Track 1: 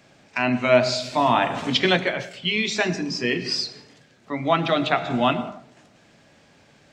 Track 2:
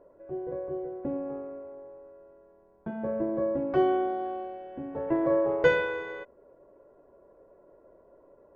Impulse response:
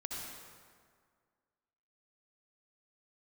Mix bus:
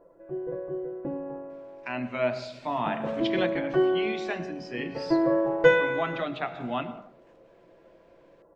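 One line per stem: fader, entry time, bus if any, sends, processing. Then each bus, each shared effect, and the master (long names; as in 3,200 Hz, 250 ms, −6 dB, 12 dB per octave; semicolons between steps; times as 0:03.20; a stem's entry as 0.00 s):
−10.0 dB, 1.50 s, no send, bass and treble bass −1 dB, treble −13 dB
−0.5 dB, 0.00 s, no send, comb filter 6 ms, depth 66%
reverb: not used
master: no processing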